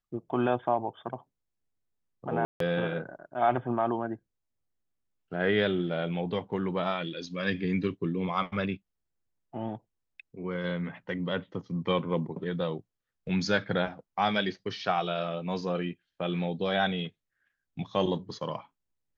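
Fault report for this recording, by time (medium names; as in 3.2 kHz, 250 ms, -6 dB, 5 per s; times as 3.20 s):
2.45–2.60 s: dropout 153 ms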